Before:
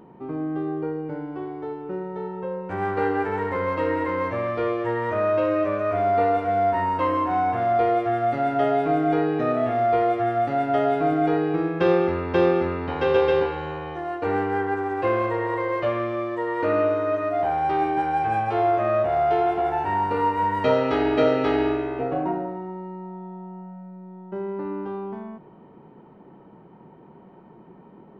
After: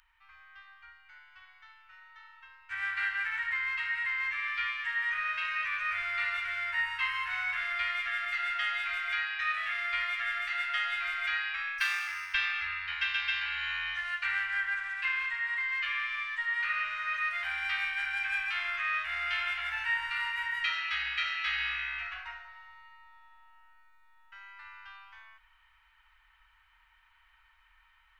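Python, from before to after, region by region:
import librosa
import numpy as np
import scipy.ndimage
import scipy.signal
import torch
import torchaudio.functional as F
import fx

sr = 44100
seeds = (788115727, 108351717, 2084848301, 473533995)

y = fx.chain(x, sr, fx.highpass(hz=180.0, slope=12),
    fx.resample_linear(factor=6), at=(11.78, 12.34))
y = scipy.signal.sosfilt(scipy.signal.cheby2(4, 80, [170.0, 450.0], 'bandstop', fs=sr, output='sos'), y)
y = fx.dynamic_eq(y, sr, hz=2200.0, q=0.74, threshold_db=-51.0, ratio=4.0, max_db=7)
y = fx.rider(y, sr, range_db=10, speed_s=0.5)
y = y * librosa.db_to_amplitude(1.5)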